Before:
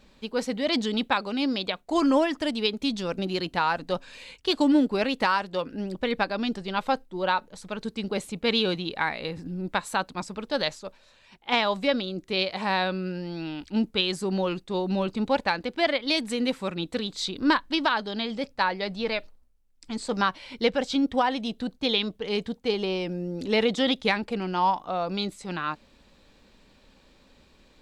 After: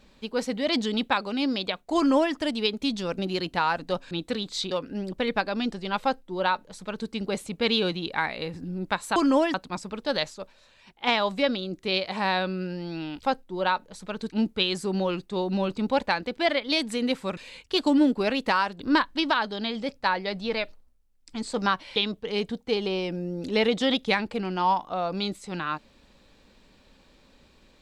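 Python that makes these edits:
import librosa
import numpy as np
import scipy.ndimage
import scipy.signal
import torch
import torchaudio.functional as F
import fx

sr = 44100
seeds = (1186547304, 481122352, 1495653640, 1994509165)

y = fx.edit(x, sr, fx.duplicate(start_s=1.96, length_s=0.38, to_s=9.99),
    fx.swap(start_s=4.11, length_s=1.43, other_s=16.75, other_length_s=0.6),
    fx.duplicate(start_s=6.85, length_s=1.07, to_s=13.68),
    fx.cut(start_s=20.51, length_s=1.42), tone=tone)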